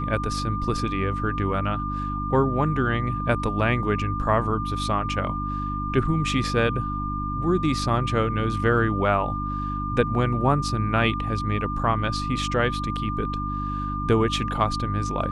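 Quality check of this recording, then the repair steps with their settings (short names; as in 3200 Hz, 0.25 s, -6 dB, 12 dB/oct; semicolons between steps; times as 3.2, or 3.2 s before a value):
hum 50 Hz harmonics 6 -30 dBFS
tone 1200 Hz -29 dBFS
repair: de-hum 50 Hz, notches 6; notch 1200 Hz, Q 30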